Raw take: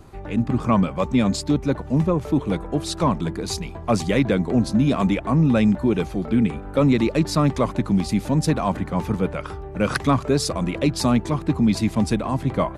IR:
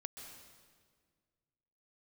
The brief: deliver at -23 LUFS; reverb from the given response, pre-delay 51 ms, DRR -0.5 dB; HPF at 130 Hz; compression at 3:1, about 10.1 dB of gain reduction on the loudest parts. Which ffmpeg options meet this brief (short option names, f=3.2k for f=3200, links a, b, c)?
-filter_complex "[0:a]highpass=130,acompressor=threshold=-29dB:ratio=3,asplit=2[a][b];[1:a]atrim=start_sample=2205,adelay=51[c];[b][c]afir=irnorm=-1:irlink=0,volume=4dB[d];[a][d]amix=inputs=2:normalize=0,volume=4.5dB"